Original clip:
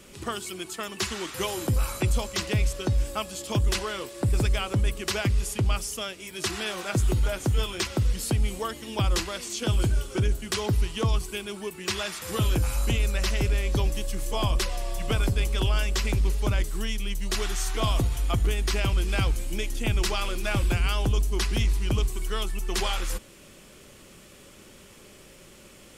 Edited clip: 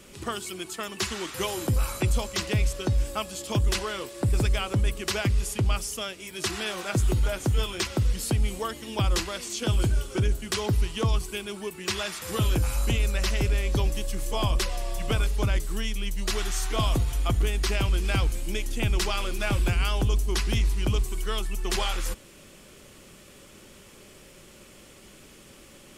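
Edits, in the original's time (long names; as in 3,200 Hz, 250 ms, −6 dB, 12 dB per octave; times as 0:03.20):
0:15.27–0:16.31: remove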